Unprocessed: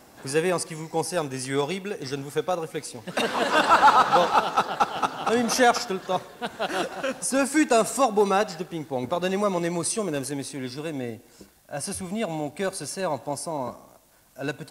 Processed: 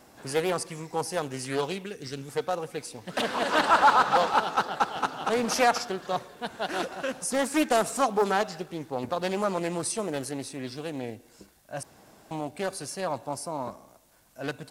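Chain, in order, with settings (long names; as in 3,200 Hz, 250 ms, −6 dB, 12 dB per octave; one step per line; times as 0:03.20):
0:01.86–0:02.29: parametric band 770 Hz −10.5 dB 1.5 octaves
0:11.83–0:12.31: fill with room tone
highs frequency-modulated by the lows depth 0.38 ms
level −3 dB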